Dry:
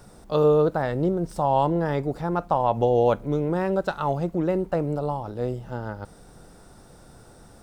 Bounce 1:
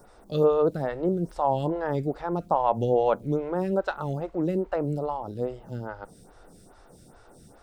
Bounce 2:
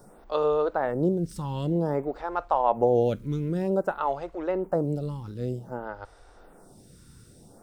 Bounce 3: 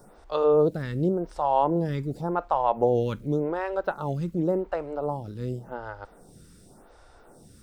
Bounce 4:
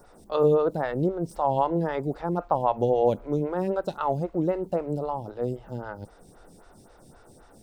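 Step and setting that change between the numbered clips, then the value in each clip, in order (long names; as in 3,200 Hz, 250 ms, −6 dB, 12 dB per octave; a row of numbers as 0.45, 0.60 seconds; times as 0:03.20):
phaser with staggered stages, speed: 2.4, 0.53, 0.89, 3.8 Hertz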